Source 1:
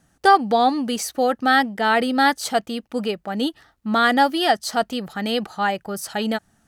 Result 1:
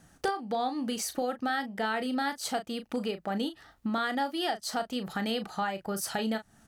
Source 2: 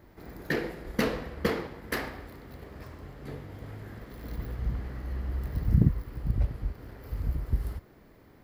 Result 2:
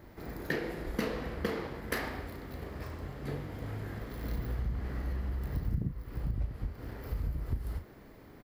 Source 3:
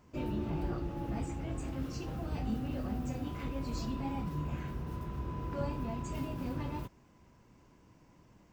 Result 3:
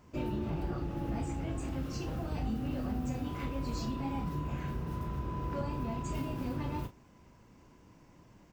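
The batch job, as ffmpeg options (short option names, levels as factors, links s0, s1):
-filter_complex "[0:a]acompressor=threshold=0.0224:ratio=5,asplit=2[s0][s1];[s1]adelay=36,volume=0.316[s2];[s0][s2]amix=inputs=2:normalize=0,volume=1.33"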